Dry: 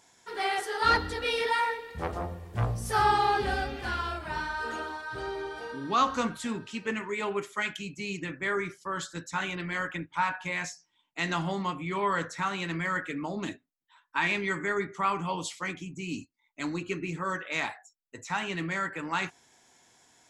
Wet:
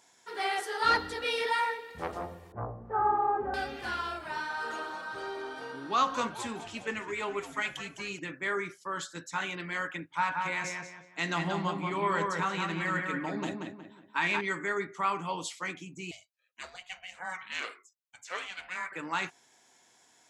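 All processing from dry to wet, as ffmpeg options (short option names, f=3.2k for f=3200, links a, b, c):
-filter_complex "[0:a]asettb=1/sr,asplit=3[a][b][c];[a]atrim=end=2.524[d];[b]atrim=start=2.52:end=3.54,asetpts=PTS-STARTPTS,afade=t=in:d=0.004:c=qsin,afade=t=out:st=1.016:d=0.004:c=qsin,lowpass=f=1.2k:w=0.5412,lowpass=f=1.2k:w=1.3066,equalizer=f=150:w=1.8:g=-6[e];[c]atrim=start=3.536[f];[d][e]acrossfade=d=0.004:c1=hsin:c2=qsin[g];[g][f]acrossfade=d=0.004:c1=qsin:c2=hsin,asettb=1/sr,asplit=3[h][i][j];[h]atrim=end=4.274[k];[i]atrim=start=4.27:end=8.19,asetpts=PTS-STARTPTS,afade=t=in:d=0.004:c=qsin,afade=t=out:st=3.916:d=0.004:c=qsin,lowshelf=f=130:g=-9,asplit=8[l][m][n][o][p][q][r][s];[m]adelay=206,afreqshift=-130,volume=-12.5dB[t];[n]adelay=412,afreqshift=-260,volume=-16.9dB[u];[o]adelay=618,afreqshift=-390,volume=-21.4dB[v];[p]adelay=824,afreqshift=-520,volume=-25.8dB[w];[q]adelay=1030,afreqshift=-650,volume=-30.2dB[x];[r]adelay=1236,afreqshift=-780,volume=-34.7dB[y];[s]adelay=1442,afreqshift=-910,volume=-39.1dB[z];[l][t][u][v][w][x][y][z]amix=inputs=8:normalize=0,atrim=end_sample=172872[aa];[j]atrim=start=8.186[ab];[k][aa]acrossfade=d=0.004:c1=hsin:c2=qsin[ac];[ac][ab]acrossfade=d=0.004:c1=qsin:c2=hsin,asettb=1/sr,asplit=3[ad][ae][af];[ad]atrim=end=10.104[ag];[ae]atrim=start=10.1:end=14.41,asetpts=PTS-STARTPTS,afade=t=in:d=0.004:c=qsin,afade=t=out:st=4.306:d=0.004:c=qsin,lowshelf=f=130:g=8,asplit=2[ah][ai];[ai]adelay=182,lowpass=f=2.5k:p=1,volume=-3dB,asplit=2[aj][ak];[ak]adelay=182,lowpass=f=2.5k:p=1,volume=0.38,asplit=2[al][am];[am]adelay=182,lowpass=f=2.5k:p=1,volume=0.38,asplit=2[an][ao];[ao]adelay=182,lowpass=f=2.5k:p=1,volume=0.38,asplit=2[ap][aq];[aq]adelay=182,lowpass=f=2.5k:p=1,volume=0.38[ar];[ah][aj][al][an][ap][ar]amix=inputs=6:normalize=0,atrim=end_sample=190071[as];[af]atrim=start=14.406[at];[ag][as]acrossfade=d=0.004:c1=hsin:c2=qsin[au];[au][at]acrossfade=d=0.004:c1=qsin:c2=hsin,asettb=1/sr,asplit=3[av][aw][ax];[av]atrim=end=16.114[ay];[aw]atrim=start=16.11:end=18.92,asetpts=PTS-STARTPTS,afade=t=in:d=0.004:c=qsin,afade=t=out:st=2.806:d=0.004:c=qsin,highpass=770,aeval=exprs='val(0)*sin(2*PI*370*n/s)':c=same[az];[ax]atrim=start=18.916[ba];[ay][az]acrossfade=d=0.004:c1=hsin:c2=qsin[bb];[bb][ba]acrossfade=d=0.004:c1=qsin:c2=hsin,highpass=f=92:p=1,lowshelf=f=160:g=-8,volume=-1.5dB"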